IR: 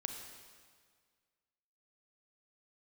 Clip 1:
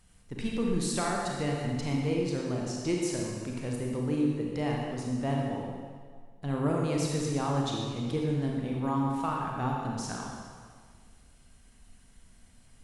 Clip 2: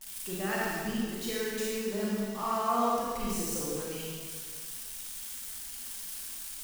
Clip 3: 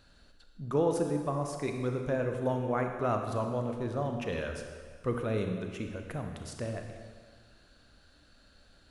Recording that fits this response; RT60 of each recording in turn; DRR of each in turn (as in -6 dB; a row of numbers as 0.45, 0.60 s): 3; 1.8, 1.8, 1.8 s; -1.5, -6.0, 4.0 dB